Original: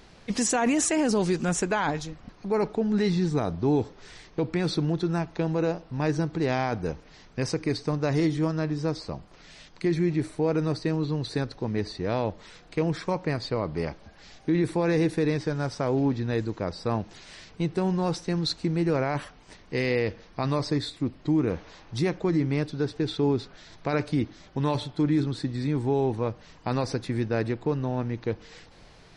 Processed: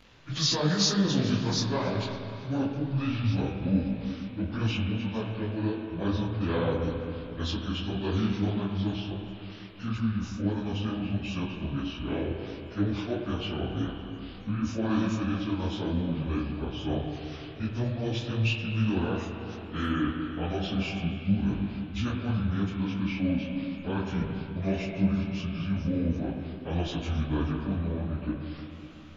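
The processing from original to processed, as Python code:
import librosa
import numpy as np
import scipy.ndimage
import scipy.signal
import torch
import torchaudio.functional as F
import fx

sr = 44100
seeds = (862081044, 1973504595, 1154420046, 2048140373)

p1 = fx.pitch_bins(x, sr, semitones=-7.5)
p2 = fx.high_shelf(p1, sr, hz=3400.0, db=12.0)
p3 = p2 + fx.echo_feedback(p2, sr, ms=278, feedback_pct=54, wet_db=-24.0, dry=0)
p4 = fx.rev_spring(p3, sr, rt60_s=3.2, pass_ms=(36, 40), chirp_ms=80, drr_db=2.5)
y = fx.detune_double(p4, sr, cents=52)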